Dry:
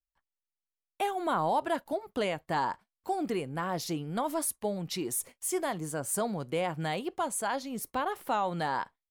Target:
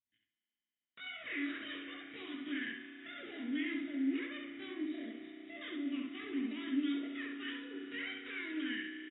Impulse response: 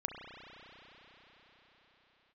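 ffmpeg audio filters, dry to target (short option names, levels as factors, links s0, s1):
-filter_complex "[0:a]asoftclip=type=tanh:threshold=0.02,asetrate=80880,aresample=44100,atempo=0.545254,asplit=3[s0][s1][s2];[s0]bandpass=f=270:t=q:w=8,volume=1[s3];[s1]bandpass=f=2290:t=q:w=8,volume=0.501[s4];[s2]bandpass=f=3010:t=q:w=8,volume=0.355[s5];[s3][s4][s5]amix=inputs=3:normalize=0,bandreject=f=530:w=12,aecho=1:1:1.1:0.33,asplit=2[s6][s7];[s7]adelay=67,lowpass=f=4200:p=1,volume=0.708,asplit=2[s8][s9];[s9]adelay=67,lowpass=f=4200:p=1,volume=0.31,asplit=2[s10][s11];[s11]adelay=67,lowpass=f=4200:p=1,volume=0.31,asplit=2[s12][s13];[s13]adelay=67,lowpass=f=4200:p=1,volume=0.31[s14];[s6][s8][s10][s12][s14]amix=inputs=5:normalize=0,flanger=delay=8.2:depth=5.2:regen=65:speed=0.7:shape=sinusoidal,asplit=2[s15][s16];[1:a]atrim=start_sample=2205[s17];[s16][s17]afir=irnorm=-1:irlink=0,volume=0.841[s18];[s15][s18]amix=inputs=2:normalize=0,volume=2.82" -ar 16000 -c:a aac -b:a 16k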